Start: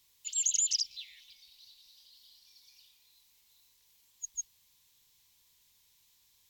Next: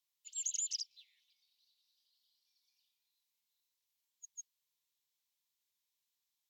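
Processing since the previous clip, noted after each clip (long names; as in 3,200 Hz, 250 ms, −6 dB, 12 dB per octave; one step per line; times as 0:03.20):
high-pass filter 340 Hz 6 dB per octave
expander for the loud parts 1.5 to 1, over −49 dBFS
level −8 dB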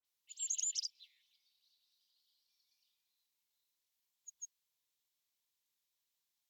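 all-pass dispersion highs, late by 51 ms, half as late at 2,800 Hz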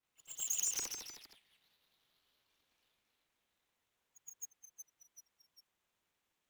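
running median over 9 samples
echo ahead of the sound 118 ms −12 dB
delay with pitch and tempo change per echo 104 ms, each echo −1 semitone, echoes 3, each echo −6 dB
level +8 dB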